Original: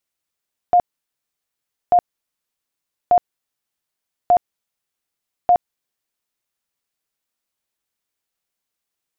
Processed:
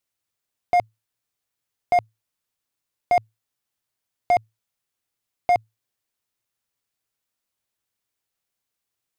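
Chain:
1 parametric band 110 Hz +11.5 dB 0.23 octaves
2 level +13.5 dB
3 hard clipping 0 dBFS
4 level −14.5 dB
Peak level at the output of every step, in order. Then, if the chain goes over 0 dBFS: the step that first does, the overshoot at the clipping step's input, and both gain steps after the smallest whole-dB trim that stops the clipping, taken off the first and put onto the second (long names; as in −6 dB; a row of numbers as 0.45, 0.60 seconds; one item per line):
−8.5, +5.0, 0.0, −14.5 dBFS
step 2, 5.0 dB
step 2 +8.5 dB, step 4 −9.5 dB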